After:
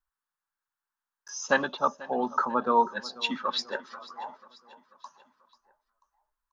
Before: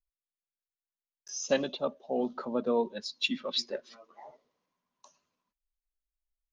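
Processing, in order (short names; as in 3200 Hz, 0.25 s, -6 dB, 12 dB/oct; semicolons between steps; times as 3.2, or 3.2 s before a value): band shelf 1200 Hz +15.5 dB 1.3 oct; feedback echo 0.489 s, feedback 51%, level -19.5 dB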